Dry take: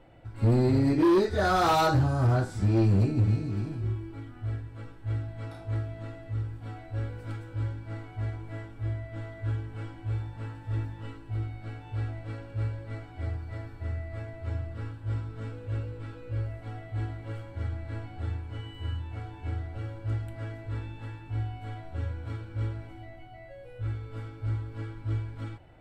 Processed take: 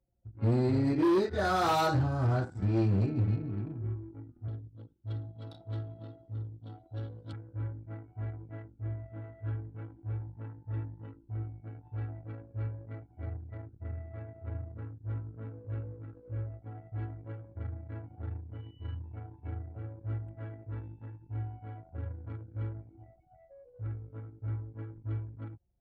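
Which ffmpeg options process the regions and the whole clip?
ffmpeg -i in.wav -filter_complex "[0:a]asettb=1/sr,asplit=3[link_01][link_02][link_03];[link_01]atrim=end=4.484[link_04];[link_02]atrim=start=4.48:end=7.33,asetpts=PTS-STARTPTS,afade=type=in:duration=0.004:curve=qsin,afade=type=out:start_time=2.846:duration=0.004:curve=qsin,highpass=83,highshelf=frequency=2800:width_type=q:width=3:gain=7[link_05];[link_03]atrim=start=7.326[link_06];[link_04][link_05]acrossfade=duration=0.004:curve1=hsin:curve2=qsin[link_07];[link_07][link_06]acrossfade=duration=0.004:curve1=qsin:curve2=hsin,highpass=71,anlmdn=0.398,volume=-4dB" out.wav

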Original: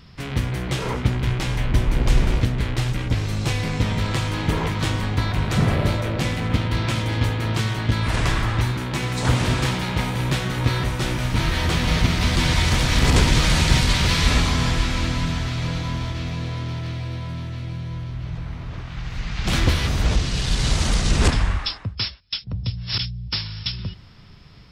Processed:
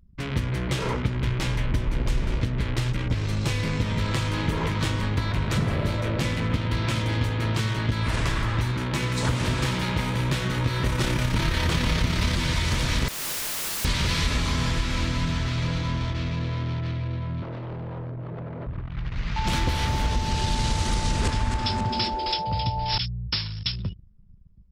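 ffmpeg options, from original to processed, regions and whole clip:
ffmpeg -i in.wav -filter_complex "[0:a]asettb=1/sr,asplit=3[link_01][link_02][link_03];[link_01]atrim=end=10.844[link_04];[link_02]atrim=start=10.84:end=12.37,asetpts=PTS-STARTPTS,afade=type=in:duration=0.004:curve=qsin,afade=type=out:start_time=1.526:duration=0.004:curve=qsin,acontrast=79,tremolo=f=34:d=0.4[link_05];[link_03]atrim=start=12.366[link_06];[link_04][link_05]acrossfade=duration=0.004:curve1=hsin:curve2=qsin[link_07];[link_07][link_06]acrossfade=duration=0.004:curve1=qsin:curve2=hsin,asettb=1/sr,asplit=3[link_08][link_09][link_10];[link_08]atrim=end=13.084[link_11];[link_09]atrim=start=13.08:end=13.85,asetpts=PTS-STARTPTS,afade=type=in:duration=0.004:curve=qsin,afade=type=out:start_time=0.766:duration=0.004:curve=qsin,bass=frequency=250:gain=-11,treble=frequency=4000:gain=-1,aeval=exprs='(mod(17.8*val(0)+1,2)-1)/17.8':channel_layout=same[link_12];[link_10]atrim=start=13.846[link_13];[link_11][link_12]acrossfade=duration=0.004:curve1=hsin:curve2=qsin[link_14];[link_14][link_13]acrossfade=duration=0.004:curve1=qsin:curve2=hsin,asettb=1/sr,asplit=3[link_15][link_16][link_17];[link_15]atrim=end=17.424[link_18];[link_16]atrim=start=17.42:end=18.67,asetpts=PTS-STARTPTS,afade=type=in:duration=0.004:curve=qsin,afade=type=out:start_time=1.246:duration=0.004:curve=qsin,highpass=frequency=110:width=0.5412,highpass=frequency=110:width=1.3066,equalizer=frequency=520:width=1.3:gain=14,aeval=exprs='0.0376*(abs(mod(val(0)/0.0376+3,4)-2)-1)':channel_layout=same[link_19];[link_17]atrim=start=18.666[link_20];[link_18][link_19]acrossfade=duration=0.004:curve1=hsin:curve2=qsin[link_21];[link_21][link_20]acrossfade=duration=0.004:curve1=qsin:curve2=hsin,asettb=1/sr,asplit=3[link_22][link_23][link_24];[link_22]atrim=end=19.364[link_25];[link_23]atrim=start=19.36:end=22.98,asetpts=PTS-STARTPTS,afade=type=in:duration=0.004:curve=qsin,afade=type=out:start_time=3.616:duration=0.004:curve=qsin,aeval=exprs='val(0)+0.0501*sin(2*PI*880*n/s)':channel_layout=same,asplit=6[link_26][link_27][link_28][link_29][link_30][link_31];[link_27]adelay=265,afreqshift=-140,volume=-8dB[link_32];[link_28]adelay=530,afreqshift=-280,volume=-14.7dB[link_33];[link_29]adelay=795,afreqshift=-420,volume=-21.5dB[link_34];[link_30]adelay=1060,afreqshift=-560,volume=-28.2dB[link_35];[link_31]adelay=1325,afreqshift=-700,volume=-35dB[link_36];[link_26][link_32][link_33][link_34][link_35][link_36]amix=inputs=6:normalize=0,atrim=end_sample=159642[link_37];[link_24]atrim=start=22.976[link_38];[link_25][link_37]acrossfade=duration=0.004:curve1=hsin:curve2=qsin[link_39];[link_39][link_38]acrossfade=duration=0.004:curve1=qsin:curve2=hsin,anlmdn=3.98,bandreject=frequency=750:width=12,acompressor=threshold=-21dB:ratio=4" out.wav

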